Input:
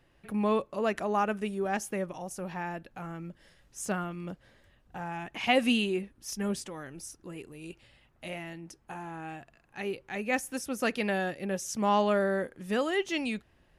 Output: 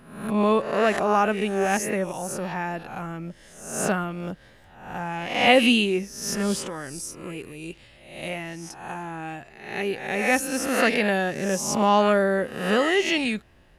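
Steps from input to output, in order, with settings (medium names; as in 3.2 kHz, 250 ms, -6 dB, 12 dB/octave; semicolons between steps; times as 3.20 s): reverse spectral sustain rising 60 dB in 0.70 s; trim +6 dB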